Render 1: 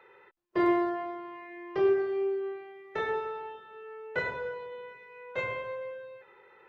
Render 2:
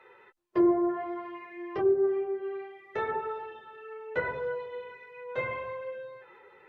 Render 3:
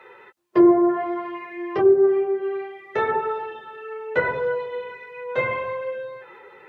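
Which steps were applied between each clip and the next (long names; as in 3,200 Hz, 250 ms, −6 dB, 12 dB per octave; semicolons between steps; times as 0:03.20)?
treble cut that deepens with the level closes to 660 Hz, closed at −22.5 dBFS; dynamic equaliser 3,500 Hz, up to −4 dB, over −49 dBFS, Q 0.82; multi-voice chorus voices 4, 0.59 Hz, delay 11 ms, depth 3.3 ms; level +4.5 dB
high-pass filter 90 Hz; level +9 dB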